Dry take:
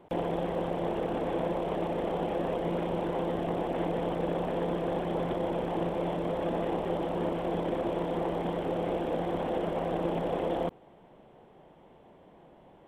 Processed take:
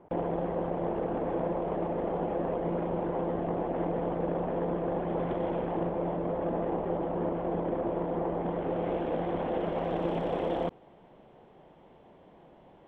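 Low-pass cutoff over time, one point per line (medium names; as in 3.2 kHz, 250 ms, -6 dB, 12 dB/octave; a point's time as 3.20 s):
4.96 s 1.6 kHz
5.46 s 2.6 kHz
5.96 s 1.5 kHz
8.37 s 1.5 kHz
8.97 s 2.8 kHz
9.51 s 2.8 kHz
10.12 s 6.2 kHz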